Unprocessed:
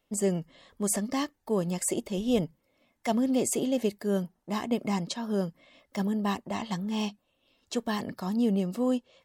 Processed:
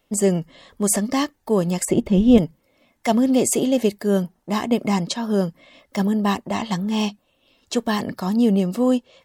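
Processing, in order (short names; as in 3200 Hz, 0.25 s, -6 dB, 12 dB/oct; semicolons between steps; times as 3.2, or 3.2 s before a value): 1.85–2.38 tone controls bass +11 dB, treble -12 dB; gain +8.5 dB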